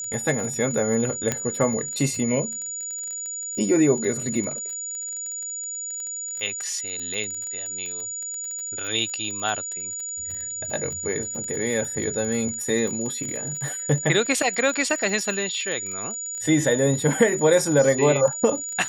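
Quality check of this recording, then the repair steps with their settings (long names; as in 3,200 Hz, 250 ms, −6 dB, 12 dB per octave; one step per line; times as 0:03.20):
surface crackle 25 per second −29 dBFS
whistle 6,900 Hz −29 dBFS
0:01.32: click −8 dBFS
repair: click removal
notch filter 6,900 Hz, Q 30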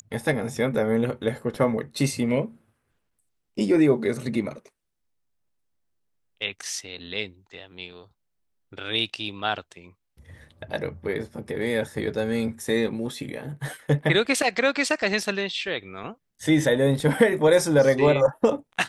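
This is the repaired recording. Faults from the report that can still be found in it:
none of them is left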